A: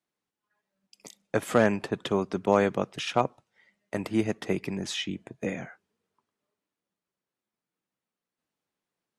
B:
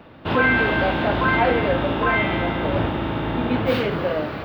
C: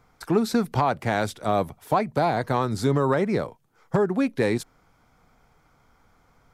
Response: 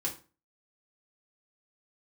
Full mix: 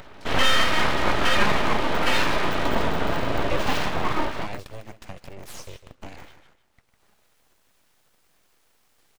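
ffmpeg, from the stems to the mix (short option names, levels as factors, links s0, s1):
-filter_complex "[0:a]acompressor=threshold=0.0316:ratio=10,aeval=exprs='val(0)*sgn(sin(2*PI*150*n/s))':c=same,adelay=600,volume=0.75,asplit=2[s0][s1];[s1]volume=0.251[s2];[1:a]aecho=1:1:3.2:0.52,bandreject=f=71.43:t=h:w=4,bandreject=f=142.86:t=h:w=4,bandreject=f=214.29:t=h:w=4,bandreject=f=285.72:t=h:w=4,bandreject=f=357.15:t=h:w=4,bandreject=f=428.58:t=h:w=4,bandreject=f=500.01:t=h:w=4,bandreject=f=571.44:t=h:w=4,bandreject=f=642.87:t=h:w=4,bandreject=f=714.3:t=h:w=4,bandreject=f=785.73:t=h:w=4,bandreject=f=857.16:t=h:w=4,bandreject=f=928.59:t=h:w=4,bandreject=f=1000.02:t=h:w=4,bandreject=f=1071.45:t=h:w=4,volume=0.794,asplit=2[s3][s4];[s4]volume=0.251[s5];[2:a]flanger=delay=19.5:depth=3.1:speed=1.9,lowpass=5400,volume=0.596[s6];[3:a]atrim=start_sample=2205[s7];[s5][s7]afir=irnorm=-1:irlink=0[s8];[s2]aecho=0:1:152|304|456:1|0.16|0.0256[s9];[s0][s3][s6][s8][s9]amix=inputs=5:normalize=0,acompressor=mode=upward:threshold=0.0112:ratio=2.5,aeval=exprs='abs(val(0))':c=same"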